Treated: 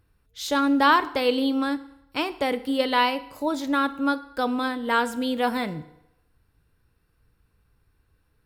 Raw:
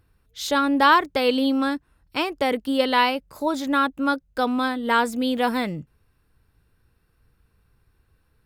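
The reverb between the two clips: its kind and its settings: FDN reverb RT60 0.86 s, low-frequency decay 0.8×, high-frequency decay 0.85×, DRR 12.5 dB; gain -2.5 dB

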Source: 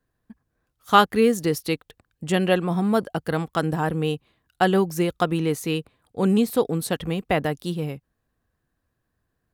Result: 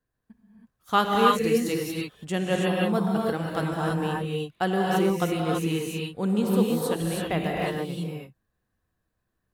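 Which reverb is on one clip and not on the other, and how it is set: non-linear reverb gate 0.35 s rising, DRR -3 dB; gain -7 dB

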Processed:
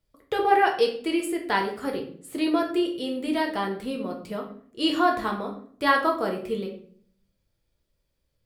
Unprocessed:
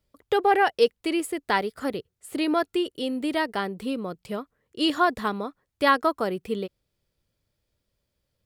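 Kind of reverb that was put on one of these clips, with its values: shoebox room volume 67 m³, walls mixed, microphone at 0.67 m; gain -3 dB

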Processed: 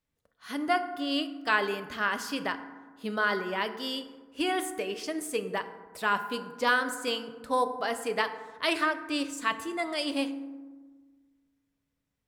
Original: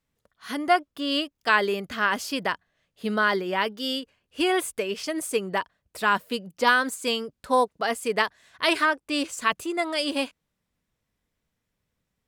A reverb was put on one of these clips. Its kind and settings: FDN reverb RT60 1.4 s, low-frequency decay 1.3×, high-frequency decay 0.4×, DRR 8 dB; gain -5.5 dB

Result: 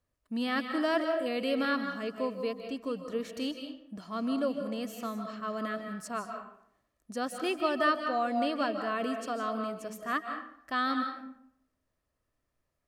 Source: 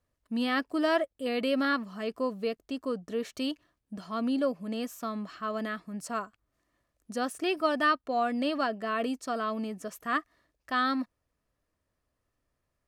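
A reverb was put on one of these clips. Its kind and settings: digital reverb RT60 0.68 s, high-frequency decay 0.65×, pre-delay 0.115 s, DRR 5.5 dB; gain -2.5 dB

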